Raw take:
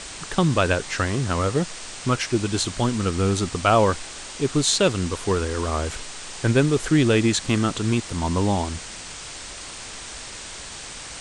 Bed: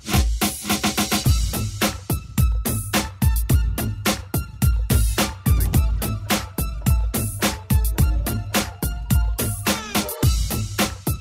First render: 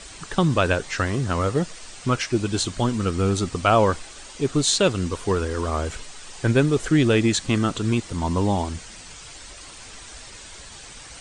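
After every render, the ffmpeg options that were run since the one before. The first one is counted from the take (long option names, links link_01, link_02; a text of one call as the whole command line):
ffmpeg -i in.wav -af "afftdn=noise_reduction=8:noise_floor=-37" out.wav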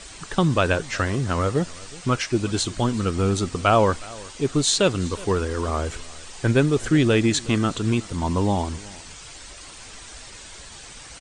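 ffmpeg -i in.wav -af "aecho=1:1:368:0.0841" out.wav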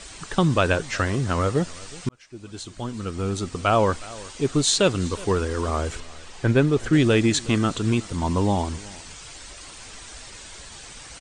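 ffmpeg -i in.wav -filter_complex "[0:a]asettb=1/sr,asplit=3[link_01][link_02][link_03];[link_01]atrim=end=6.004[link_04];[link_02]atrim=start=6:end=6.93,asetpts=PTS-STARTPTS,afade=type=in:duration=0.004:curve=qsin,afade=type=out:start_time=0.926:duration=0.004:curve=qsin,lowpass=frequency=3600:poles=1[link_05];[link_03]atrim=start=6.926[link_06];[link_04][link_05]acrossfade=duration=0.004:curve1=hsin:curve2=qsin[link_07];[link_07][link_06]acrossfade=duration=0.004:curve1=qsin:curve2=hsin,asplit=2[link_08][link_09];[link_08]atrim=end=2.09,asetpts=PTS-STARTPTS,afade=type=out:start_time=2.086:duration=0.004:curve=hsin[link_10];[link_09]atrim=start=2.09,asetpts=PTS-STARTPTS,afade=type=in:duration=2.1[link_11];[link_10][link_11]concat=n=2:v=0:a=1" out.wav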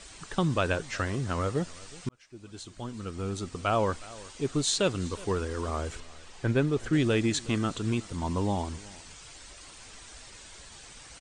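ffmpeg -i in.wav -af "volume=-7dB" out.wav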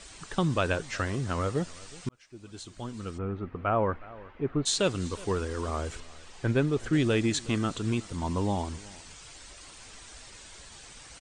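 ffmpeg -i in.wav -filter_complex "[0:a]asplit=3[link_01][link_02][link_03];[link_01]afade=type=out:start_time=3.17:duration=0.02[link_04];[link_02]lowpass=frequency=2100:width=0.5412,lowpass=frequency=2100:width=1.3066,afade=type=in:start_time=3.17:duration=0.02,afade=type=out:start_time=4.65:duration=0.02[link_05];[link_03]afade=type=in:start_time=4.65:duration=0.02[link_06];[link_04][link_05][link_06]amix=inputs=3:normalize=0" out.wav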